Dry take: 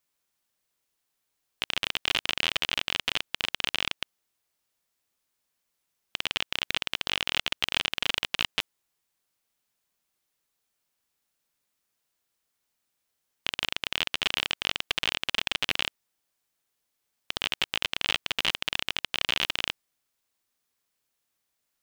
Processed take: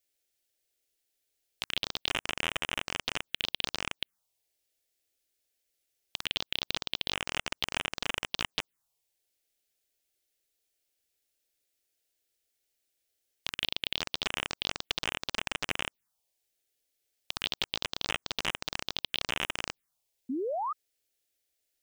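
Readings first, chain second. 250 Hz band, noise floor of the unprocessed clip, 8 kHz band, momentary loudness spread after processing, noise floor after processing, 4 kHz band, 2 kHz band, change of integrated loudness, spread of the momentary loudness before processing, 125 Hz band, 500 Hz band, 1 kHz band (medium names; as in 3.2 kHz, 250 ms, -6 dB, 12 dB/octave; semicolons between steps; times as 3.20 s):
+2.0 dB, -80 dBFS, -2.0 dB, 6 LU, -83 dBFS, -5.5 dB, -5.5 dB, -5.0 dB, 7 LU, -0.5 dB, +2.0 dB, -0.5 dB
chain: touch-sensitive phaser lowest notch 180 Hz, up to 4.4 kHz, full sweep at -26.5 dBFS; painted sound rise, 20.29–20.73 s, 240–1300 Hz -32 dBFS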